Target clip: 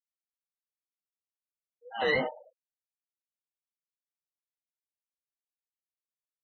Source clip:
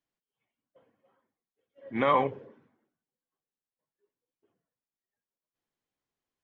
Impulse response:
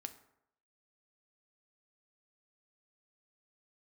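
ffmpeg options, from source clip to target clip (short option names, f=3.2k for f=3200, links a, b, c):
-filter_complex "[0:a]afftfilt=real='real(if(between(b,1,1008),(2*floor((b-1)/48)+1)*48-b,b),0)':imag='imag(if(between(b,1,1008),(2*floor((b-1)/48)+1)*48-b,b),0)*if(between(b,1,1008),-1,1)':win_size=2048:overlap=0.75,asplit=2[a][b];[b]asetrate=88200,aresample=44100,atempo=0.5,volume=-13dB[c];[a][c]amix=inputs=2:normalize=0,highpass=f=240:p=1,flanger=delay=18:depth=4.4:speed=3,afftfilt=real='re*gte(hypot(re,im),0.0141)':imag='im*gte(hypot(re,im),0.0141)':win_size=1024:overlap=0.75"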